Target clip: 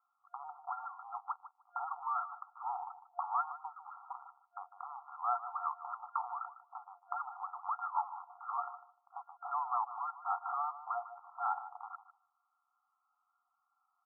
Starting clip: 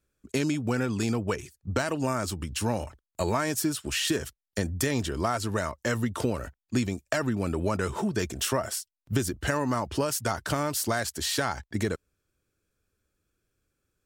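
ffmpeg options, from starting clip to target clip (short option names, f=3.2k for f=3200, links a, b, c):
-filter_complex "[0:a]aresample=16000,volume=24.5dB,asoftclip=hard,volume=-24.5dB,aresample=44100,acompressor=threshold=-40dB:ratio=5,asplit=2[a][b];[b]adelay=151,lowpass=f=910:p=1,volume=-10dB,asplit=2[c][d];[d]adelay=151,lowpass=f=910:p=1,volume=0.23,asplit=2[e][f];[f]adelay=151,lowpass=f=910:p=1,volume=0.23[g];[a][c][e][g]amix=inputs=4:normalize=0,afftfilt=real='re*between(b*sr/4096,700,1400)':imag='im*between(b*sr/4096,700,1400)':win_size=4096:overlap=0.75,volume=12dB"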